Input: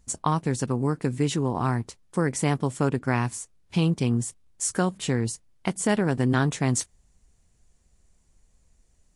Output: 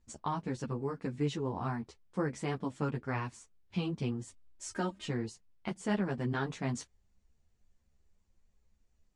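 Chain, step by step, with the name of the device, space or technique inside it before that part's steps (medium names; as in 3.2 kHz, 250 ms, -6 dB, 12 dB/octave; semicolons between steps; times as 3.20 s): 4.27–5.07 s: comb 3.2 ms, depth 82%; string-machine ensemble chorus (three-phase chorus; low-pass 4.8 kHz 12 dB/octave); trim -6.5 dB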